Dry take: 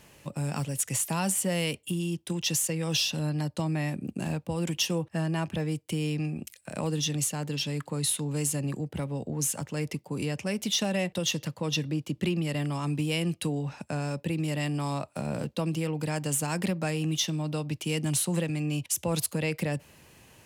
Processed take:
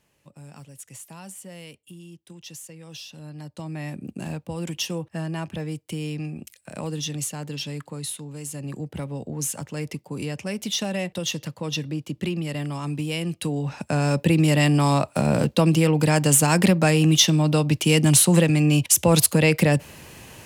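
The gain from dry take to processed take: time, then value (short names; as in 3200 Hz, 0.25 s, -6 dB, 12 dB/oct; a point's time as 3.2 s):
3.06 s -13 dB
3.99 s -0.5 dB
7.72 s -0.5 dB
8.4 s -7 dB
8.82 s +1 dB
13.29 s +1 dB
14.18 s +11.5 dB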